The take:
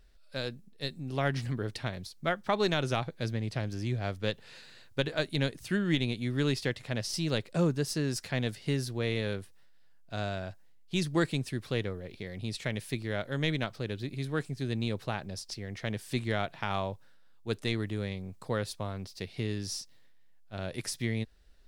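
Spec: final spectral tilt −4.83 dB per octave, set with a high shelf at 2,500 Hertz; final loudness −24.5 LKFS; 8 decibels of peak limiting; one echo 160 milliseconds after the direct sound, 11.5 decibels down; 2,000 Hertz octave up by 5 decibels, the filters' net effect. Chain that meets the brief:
parametric band 2,000 Hz +8 dB
high-shelf EQ 2,500 Hz −4 dB
brickwall limiter −20 dBFS
single-tap delay 160 ms −11.5 dB
level +10 dB

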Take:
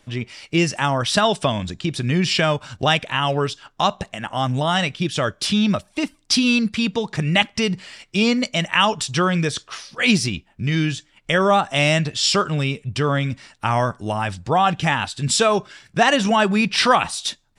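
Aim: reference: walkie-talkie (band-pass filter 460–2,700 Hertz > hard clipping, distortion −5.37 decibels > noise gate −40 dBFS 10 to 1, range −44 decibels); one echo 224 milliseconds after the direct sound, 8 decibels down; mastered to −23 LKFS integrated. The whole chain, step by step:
band-pass filter 460–2,700 Hz
single-tap delay 224 ms −8 dB
hard clipping −22.5 dBFS
noise gate −40 dBFS 10 to 1, range −44 dB
level +4.5 dB

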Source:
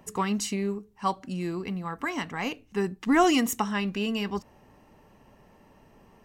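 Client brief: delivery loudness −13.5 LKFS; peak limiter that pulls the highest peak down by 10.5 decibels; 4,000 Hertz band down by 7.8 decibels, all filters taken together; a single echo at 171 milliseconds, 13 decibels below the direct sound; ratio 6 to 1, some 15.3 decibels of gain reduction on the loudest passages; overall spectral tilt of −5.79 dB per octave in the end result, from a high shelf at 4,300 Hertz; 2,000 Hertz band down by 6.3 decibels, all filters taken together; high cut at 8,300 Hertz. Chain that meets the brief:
low-pass filter 8,300 Hz
parametric band 2,000 Hz −5 dB
parametric band 4,000 Hz −6 dB
high-shelf EQ 4,300 Hz −6 dB
downward compressor 6 to 1, threshold −35 dBFS
brickwall limiter −33 dBFS
single-tap delay 171 ms −13 dB
level +28 dB

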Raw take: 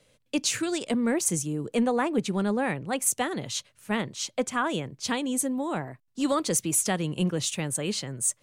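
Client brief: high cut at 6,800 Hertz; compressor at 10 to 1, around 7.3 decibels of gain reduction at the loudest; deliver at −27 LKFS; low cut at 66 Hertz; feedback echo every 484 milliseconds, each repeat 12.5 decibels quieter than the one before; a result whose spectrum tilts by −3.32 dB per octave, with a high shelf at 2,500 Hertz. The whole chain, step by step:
high-pass filter 66 Hz
low-pass filter 6,800 Hz
high-shelf EQ 2,500 Hz +4.5 dB
downward compressor 10 to 1, threshold −28 dBFS
repeating echo 484 ms, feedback 24%, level −12.5 dB
level +5.5 dB

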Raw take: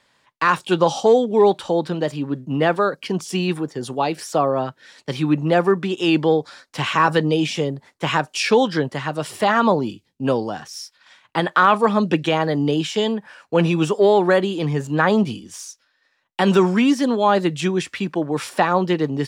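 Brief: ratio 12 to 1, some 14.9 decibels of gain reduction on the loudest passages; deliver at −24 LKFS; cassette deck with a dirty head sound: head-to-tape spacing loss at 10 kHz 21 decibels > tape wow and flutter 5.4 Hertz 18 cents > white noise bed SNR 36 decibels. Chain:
downward compressor 12 to 1, threshold −25 dBFS
head-to-tape spacing loss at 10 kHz 21 dB
tape wow and flutter 5.4 Hz 18 cents
white noise bed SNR 36 dB
level +8 dB

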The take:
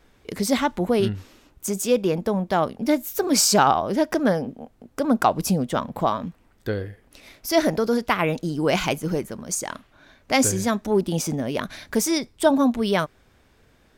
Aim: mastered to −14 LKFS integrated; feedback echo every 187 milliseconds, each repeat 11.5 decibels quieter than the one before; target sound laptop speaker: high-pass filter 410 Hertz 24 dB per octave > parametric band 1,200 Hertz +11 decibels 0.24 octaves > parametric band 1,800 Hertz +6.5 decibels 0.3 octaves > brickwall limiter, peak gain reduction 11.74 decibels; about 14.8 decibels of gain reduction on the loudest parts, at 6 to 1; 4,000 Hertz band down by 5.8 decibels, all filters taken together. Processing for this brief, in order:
parametric band 4,000 Hz −8.5 dB
downward compressor 6 to 1, threshold −29 dBFS
high-pass filter 410 Hz 24 dB per octave
parametric band 1,200 Hz +11 dB 0.24 octaves
parametric band 1,800 Hz +6.5 dB 0.3 octaves
repeating echo 187 ms, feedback 27%, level −11.5 dB
level +24 dB
brickwall limiter −2.5 dBFS

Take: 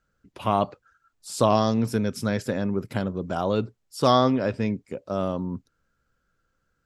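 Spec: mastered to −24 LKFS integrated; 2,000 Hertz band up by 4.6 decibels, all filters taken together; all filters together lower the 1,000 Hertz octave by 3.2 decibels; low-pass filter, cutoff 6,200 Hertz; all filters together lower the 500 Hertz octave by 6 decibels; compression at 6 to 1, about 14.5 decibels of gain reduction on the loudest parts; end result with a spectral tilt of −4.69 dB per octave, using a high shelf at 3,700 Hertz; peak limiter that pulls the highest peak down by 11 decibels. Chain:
low-pass filter 6,200 Hz
parametric band 500 Hz −7 dB
parametric band 1,000 Hz −4 dB
parametric band 2,000 Hz +7 dB
high-shelf EQ 3,700 Hz +5 dB
downward compressor 6 to 1, threshold −33 dBFS
level +16.5 dB
brickwall limiter −12 dBFS

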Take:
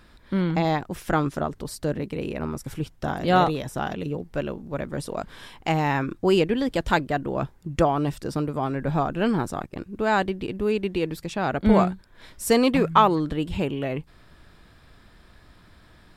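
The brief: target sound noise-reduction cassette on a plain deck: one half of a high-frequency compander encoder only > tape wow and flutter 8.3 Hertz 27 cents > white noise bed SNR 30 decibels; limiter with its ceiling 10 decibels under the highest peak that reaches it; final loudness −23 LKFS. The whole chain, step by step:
brickwall limiter −14 dBFS
one half of a high-frequency compander encoder only
tape wow and flutter 8.3 Hz 27 cents
white noise bed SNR 30 dB
level +4 dB

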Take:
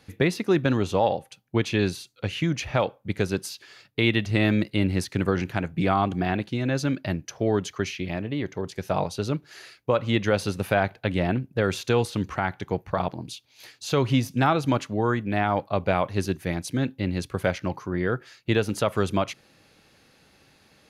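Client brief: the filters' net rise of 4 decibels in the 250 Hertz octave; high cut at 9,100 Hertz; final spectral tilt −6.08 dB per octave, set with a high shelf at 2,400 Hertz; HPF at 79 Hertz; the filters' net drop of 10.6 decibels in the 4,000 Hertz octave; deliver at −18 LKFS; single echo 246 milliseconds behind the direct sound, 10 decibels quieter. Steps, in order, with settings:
high-pass filter 79 Hz
low-pass filter 9,100 Hz
parametric band 250 Hz +5.5 dB
high-shelf EQ 2,400 Hz −8.5 dB
parametric band 4,000 Hz −6.5 dB
single-tap delay 246 ms −10 dB
level +6 dB

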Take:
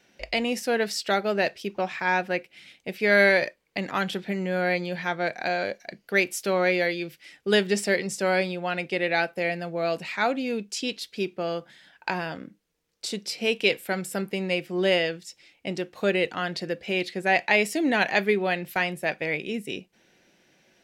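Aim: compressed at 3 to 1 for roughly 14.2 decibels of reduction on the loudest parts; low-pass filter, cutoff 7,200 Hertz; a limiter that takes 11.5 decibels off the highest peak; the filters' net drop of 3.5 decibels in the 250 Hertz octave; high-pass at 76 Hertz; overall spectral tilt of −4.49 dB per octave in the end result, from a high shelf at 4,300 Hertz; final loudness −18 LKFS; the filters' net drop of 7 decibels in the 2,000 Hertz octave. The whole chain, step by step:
high-pass filter 76 Hz
low-pass filter 7,200 Hz
parametric band 250 Hz −5 dB
parametric band 2,000 Hz −7.5 dB
high-shelf EQ 4,300 Hz −6 dB
downward compressor 3 to 1, threshold −39 dBFS
level +24 dB
brickwall limiter −7 dBFS

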